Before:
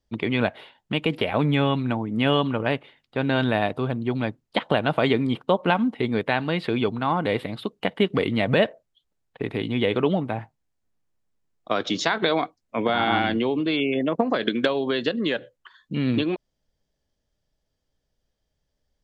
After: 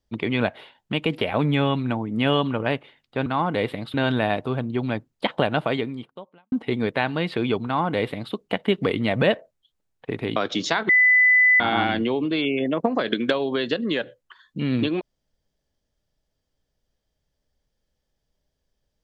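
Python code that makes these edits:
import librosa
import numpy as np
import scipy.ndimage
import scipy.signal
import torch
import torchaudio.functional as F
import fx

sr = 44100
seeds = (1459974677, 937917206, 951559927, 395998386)

y = fx.edit(x, sr, fx.fade_out_span(start_s=4.87, length_s=0.97, curve='qua'),
    fx.duplicate(start_s=6.97, length_s=0.68, to_s=3.26),
    fx.cut(start_s=9.68, length_s=2.03),
    fx.bleep(start_s=12.24, length_s=0.71, hz=2000.0, db=-12.5), tone=tone)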